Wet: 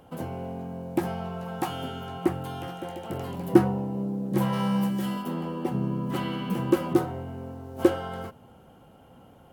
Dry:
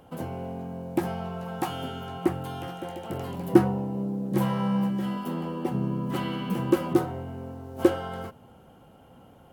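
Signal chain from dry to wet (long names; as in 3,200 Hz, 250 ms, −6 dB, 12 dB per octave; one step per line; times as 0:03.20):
0:04.52–0:05.21: high-shelf EQ 2,600 Hz → 4,600 Hz +11 dB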